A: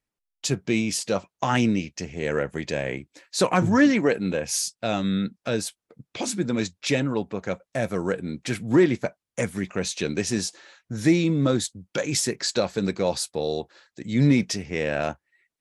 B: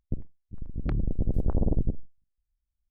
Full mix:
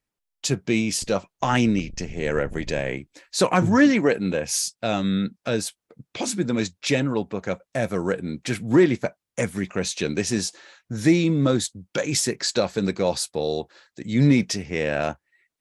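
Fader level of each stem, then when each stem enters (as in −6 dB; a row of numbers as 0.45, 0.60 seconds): +1.5, −12.5 decibels; 0.00, 0.90 seconds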